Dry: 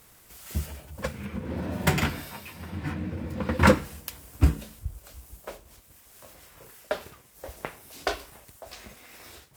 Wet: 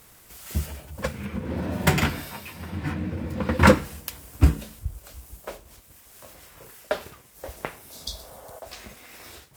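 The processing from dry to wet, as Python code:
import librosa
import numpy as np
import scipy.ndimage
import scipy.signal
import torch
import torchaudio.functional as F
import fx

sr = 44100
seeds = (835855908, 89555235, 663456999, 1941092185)

y = fx.spec_repair(x, sr, seeds[0], start_s=7.94, length_s=0.62, low_hz=260.0, high_hz=3300.0, source='both')
y = F.gain(torch.from_numpy(y), 3.0).numpy()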